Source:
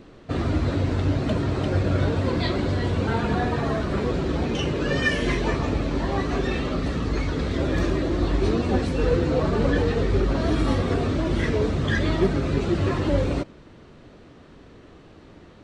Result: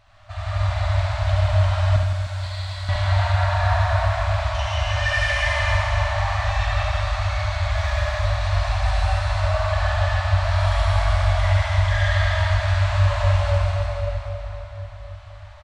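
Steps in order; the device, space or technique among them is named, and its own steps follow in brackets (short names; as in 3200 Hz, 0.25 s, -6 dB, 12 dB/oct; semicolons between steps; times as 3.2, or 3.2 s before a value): FFT band-reject 110–570 Hz; cave (echo 0.286 s -9 dB; reverb RT60 3.9 s, pre-delay 75 ms, DRR -7 dB); 1.96–2.89 pre-emphasis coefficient 0.8; reverse bouncing-ball echo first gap 70 ms, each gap 1.4×, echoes 5; gain -4.5 dB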